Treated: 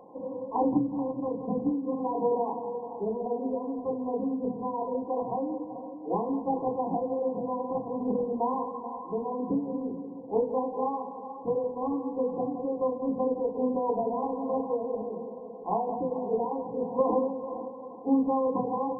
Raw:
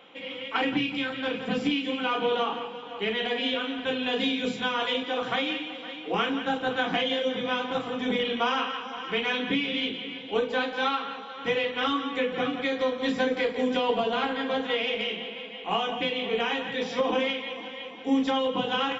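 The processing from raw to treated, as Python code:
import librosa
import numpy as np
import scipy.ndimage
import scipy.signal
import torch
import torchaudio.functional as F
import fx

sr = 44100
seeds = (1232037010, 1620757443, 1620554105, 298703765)

y = fx.rider(x, sr, range_db=10, speed_s=2.0)
y = fx.brickwall_lowpass(y, sr, high_hz=1100.0)
y = y + 10.0 ** (-13.0 / 20.0) * np.pad(y, (int(432 * sr / 1000.0), 0))[:len(y)]
y = y * 10.0 ** (-1.0 / 20.0)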